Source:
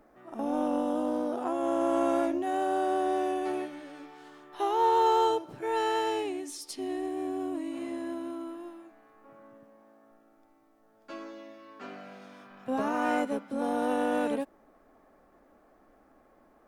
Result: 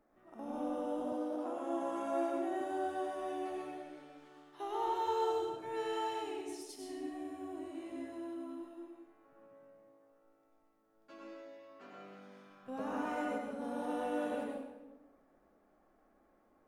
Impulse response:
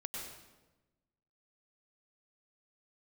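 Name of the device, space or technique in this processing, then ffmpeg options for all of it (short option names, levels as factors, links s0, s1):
bathroom: -filter_complex "[1:a]atrim=start_sample=2205[s0];[0:a][s0]afir=irnorm=-1:irlink=0,asettb=1/sr,asplit=3[s1][s2][s3];[s1]atrim=end=1.124[s4];[s2]atrim=start=1.12:end=2.61,asetpts=PTS-STARTPTS,afade=t=in:d=0.004:c=qsin,afade=t=out:st=1.486:d=0.004:c=qsin,highpass=150[s5];[s3]atrim=start=2.606[s6];[s4][s5]acrossfade=d=0.004:c1=hsin:c2=qsin[s7];[s7][s6]acrossfade=d=0.004:c1=qsin:c2=hsin,volume=0.376"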